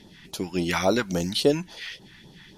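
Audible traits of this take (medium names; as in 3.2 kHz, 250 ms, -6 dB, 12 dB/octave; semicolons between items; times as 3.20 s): phasing stages 2, 3.6 Hz, lowest notch 450–2000 Hz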